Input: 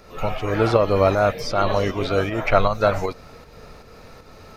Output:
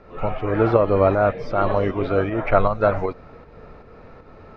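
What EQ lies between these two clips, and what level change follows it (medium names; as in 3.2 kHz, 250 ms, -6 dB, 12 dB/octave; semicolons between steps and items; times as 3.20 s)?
low-pass 1.9 kHz 12 dB/octave; peaking EQ 330 Hz +2.5 dB 0.77 oct; 0.0 dB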